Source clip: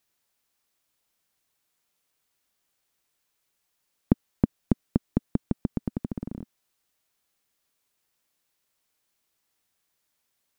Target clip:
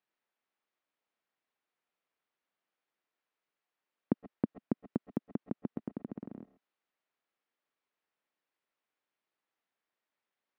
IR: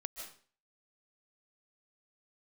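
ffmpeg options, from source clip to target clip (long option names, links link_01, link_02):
-filter_complex "[0:a]highpass=230,lowpass=2400[link_01];[1:a]atrim=start_sample=2205,atrim=end_sample=6174[link_02];[link_01][link_02]afir=irnorm=-1:irlink=0,volume=-2dB"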